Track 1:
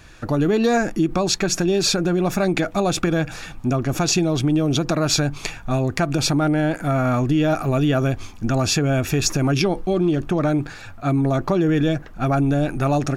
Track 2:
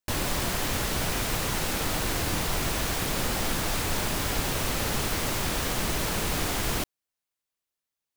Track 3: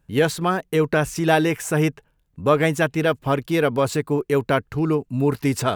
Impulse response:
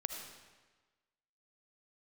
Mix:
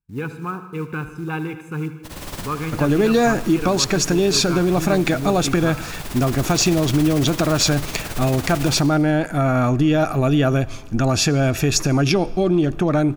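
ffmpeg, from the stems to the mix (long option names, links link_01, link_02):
-filter_complex "[0:a]adelay=2500,volume=0.5dB,asplit=2[link_01][link_02];[link_02]volume=-15.5dB[link_03];[1:a]tremolo=f=18:d=0.87,adelay=1950,volume=0.5dB,asplit=2[link_04][link_05];[link_05]volume=-9dB[link_06];[2:a]afwtdn=0.0316,aecho=1:1:0.8:1,acrusher=bits=7:mode=log:mix=0:aa=0.000001,volume=-14dB,asplit=4[link_07][link_08][link_09][link_10];[link_08]volume=-4.5dB[link_11];[link_09]volume=-10.5dB[link_12];[link_10]apad=whole_len=450547[link_13];[link_04][link_13]sidechaincompress=threshold=-37dB:ratio=8:attack=7.1:release=661[link_14];[3:a]atrim=start_sample=2205[link_15];[link_03][link_11]amix=inputs=2:normalize=0[link_16];[link_16][link_15]afir=irnorm=-1:irlink=0[link_17];[link_06][link_12]amix=inputs=2:normalize=0,aecho=0:1:76|152|228|304|380|456|532|608|684:1|0.58|0.336|0.195|0.113|0.0656|0.0381|0.0221|0.0128[link_18];[link_01][link_14][link_07][link_17][link_18]amix=inputs=5:normalize=0"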